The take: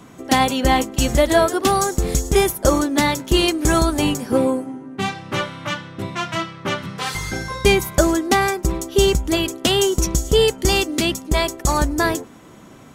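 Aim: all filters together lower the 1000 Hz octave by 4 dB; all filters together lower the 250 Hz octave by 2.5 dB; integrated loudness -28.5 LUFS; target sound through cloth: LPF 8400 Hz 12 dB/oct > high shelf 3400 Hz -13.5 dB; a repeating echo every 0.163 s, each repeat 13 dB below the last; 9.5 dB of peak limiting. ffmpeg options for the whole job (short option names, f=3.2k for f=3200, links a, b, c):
-af "equalizer=f=250:t=o:g=-3,equalizer=f=1k:t=o:g=-4,alimiter=limit=-13dB:level=0:latency=1,lowpass=8.4k,highshelf=f=3.4k:g=-13.5,aecho=1:1:163|326|489:0.224|0.0493|0.0108,volume=-3dB"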